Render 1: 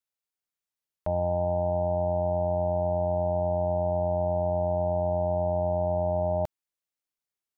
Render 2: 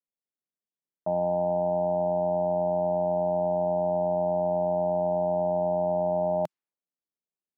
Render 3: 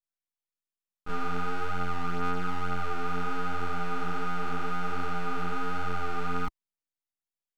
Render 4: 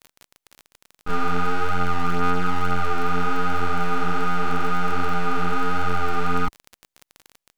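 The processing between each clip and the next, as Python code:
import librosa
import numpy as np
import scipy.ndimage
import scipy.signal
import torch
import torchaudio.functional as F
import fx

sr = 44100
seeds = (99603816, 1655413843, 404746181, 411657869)

y1 = fx.env_lowpass(x, sr, base_hz=490.0, full_db=-24.0)
y1 = scipy.signal.sosfilt(scipy.signal.cheby1(3, 1.0, 170.0, 'highpass', fs=sr, output='sos'), y1)
y1 = F.gain(torch.from_numpy(y1), 2.0).numpy()
y2 = np.abs(y1)
y2 = fx.chorus_voices(y2, sr, voices=2, hz=1.1, base_ms=27, depth_ms=3.0, mix_pct=65)
y3 = fx.dmg_crackle(y2, sr, seeds[0], per_s=31.0, level_db=-36.0)
y3 = F.gain(torch.from_numpy(y3), 8.5).numpy()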